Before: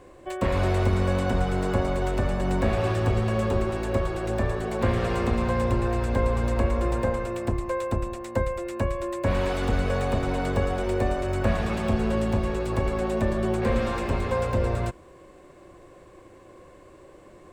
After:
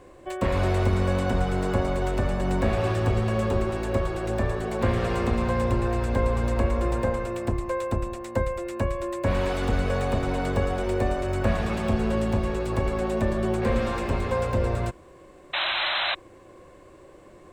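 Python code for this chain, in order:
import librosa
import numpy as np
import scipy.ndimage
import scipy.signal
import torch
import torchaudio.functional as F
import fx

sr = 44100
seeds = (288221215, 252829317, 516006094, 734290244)

y = fx.spec_paint(x, sr, seeds[0], shape='noise', start_s=15.53, length_s=0.62, low_hz=540.0, high_hz=4100.0, level_db=-26.0)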